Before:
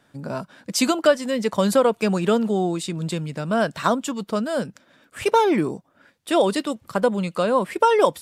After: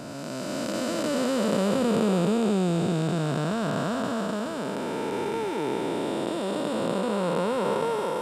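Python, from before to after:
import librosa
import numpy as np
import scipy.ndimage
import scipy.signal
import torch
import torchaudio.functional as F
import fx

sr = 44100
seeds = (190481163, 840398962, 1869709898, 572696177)

y = fx.spec_blur(x, sr, span_ms=1110.0)
y = y * librosa.db_to_amplitude(3.0)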